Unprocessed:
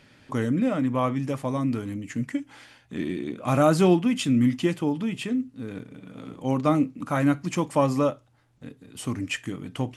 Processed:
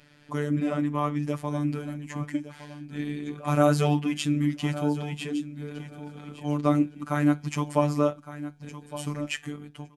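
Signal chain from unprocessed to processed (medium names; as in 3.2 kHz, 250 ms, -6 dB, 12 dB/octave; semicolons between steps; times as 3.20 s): fade out at the end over 0.52 s; robot voice 147 Hz; feedback delay 1162 ms, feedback 16%, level -14 dB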